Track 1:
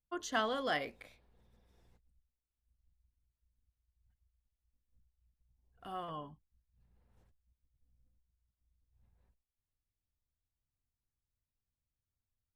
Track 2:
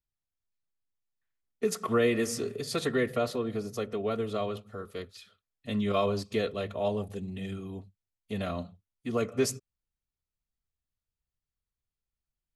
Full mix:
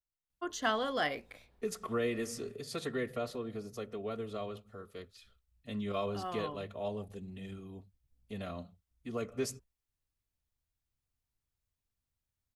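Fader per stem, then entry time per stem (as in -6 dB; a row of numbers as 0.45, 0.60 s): +2.0, -8.0 dB; 0.30, 0.00 s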